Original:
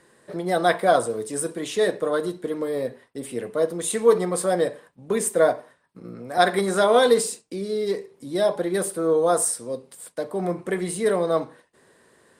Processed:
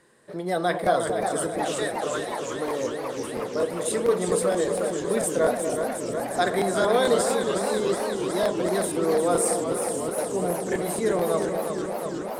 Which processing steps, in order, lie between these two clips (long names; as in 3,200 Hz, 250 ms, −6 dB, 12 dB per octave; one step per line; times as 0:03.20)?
0:01.74–0:02.59: high-pass filter 720 Hz 12 dB per octave
in parallel at −0.5 dB: brickwall limiter −14 dBFS, peak gain reduction 10 dB
on the sum: delay that swaps between a low-pass and a high-pass 240 ms, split 1,000 Hz, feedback 63%, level −6.5 dB
regular buffer underruns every 0.23 s, samples 1,024, repeat, from 0:00.82
feedback echo with a swinging delay time 362 ms, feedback 80%, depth 141 cents, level −7 dB
level −8.5 dB